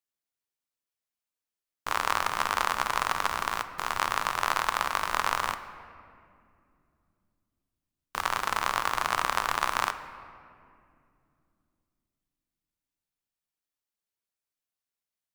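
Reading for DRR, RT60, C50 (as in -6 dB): 10.0 dB, 2.5 s, 11.5 dB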